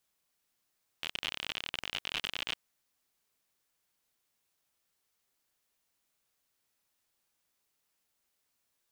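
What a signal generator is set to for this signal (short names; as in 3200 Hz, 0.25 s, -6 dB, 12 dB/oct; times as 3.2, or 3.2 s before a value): random clicks 59/s -18.5 dBFS 1.51 s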